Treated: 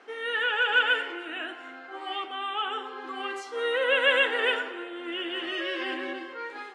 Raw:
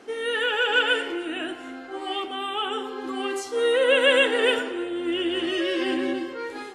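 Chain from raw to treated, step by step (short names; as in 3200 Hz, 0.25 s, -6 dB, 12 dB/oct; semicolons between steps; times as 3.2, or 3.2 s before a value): band-pass 1500 Hz, Q 0.75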